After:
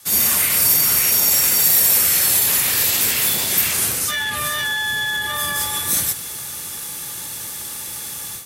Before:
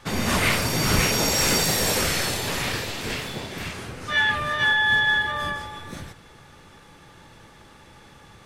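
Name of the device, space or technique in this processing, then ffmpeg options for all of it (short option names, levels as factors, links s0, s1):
FM broadcast chain: -filter_complex "[0:a]highpass=59,dynaudnorm=f=110:g=3:m=6.31,acrossover=split=340|690|2800[s0][s1][s2][s3];[s0]acompressor=threshold=0.0794:ratio=4[s4];[s1]acompressor=threshold=0.0398:ratio=4[s5];[s2]acompressor=threshold=0.158:ratio=4[s6];[s3]acompressor=threshold=0.0316:ratio=4[s7];[s4][s5][s6][s7]amix=inputs=4:normalize=0,aemphasis=mode=production:type=75fm,alimiter=limit=0.355:level=0:latency=1:release=27,asoftclip=type=hard:threshold=0.266,lowpass=f=15000:w=0.5412,lowpass=f=15000:w=1.3066,aemphasis=mode=production:type=75fm,volume=0.398"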